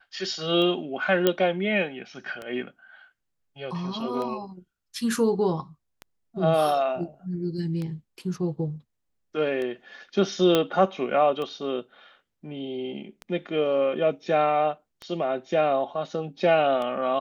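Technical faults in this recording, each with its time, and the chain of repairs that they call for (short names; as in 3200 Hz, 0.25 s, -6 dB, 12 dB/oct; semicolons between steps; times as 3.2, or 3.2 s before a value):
tick 33 1/3 rpm -21 dBFS
1.27 pop -7 dBFS
10.55 pop -8 dBFS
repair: de-click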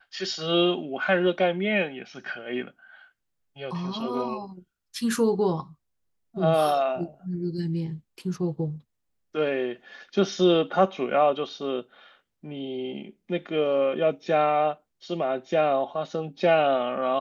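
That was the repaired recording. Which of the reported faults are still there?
none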